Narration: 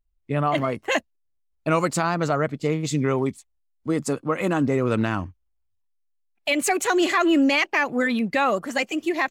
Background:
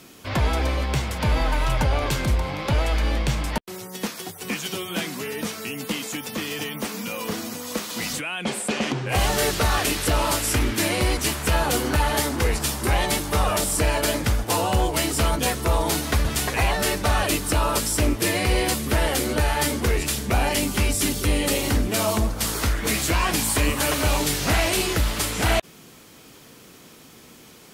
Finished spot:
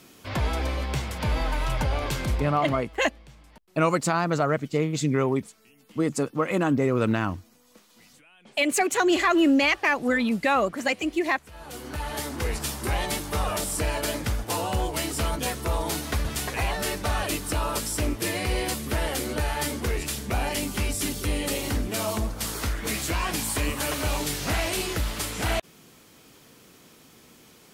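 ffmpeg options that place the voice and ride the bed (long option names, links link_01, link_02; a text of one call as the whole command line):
ffmpeg -i stem1.wav -i stem2.wav -filter_complex "[0:a]adelay=2100,volume=-1dB[link_01];[1:a]volume=16.5dB,afade=type=out:start_time=2.31:duration=0.54:silence=0.0794328,afade=type=in:start_time=11.52:duration=1.05:silence=0.0891251[link_02];[link_01][link_02]amix=inputs=2:normalize=0" out.wav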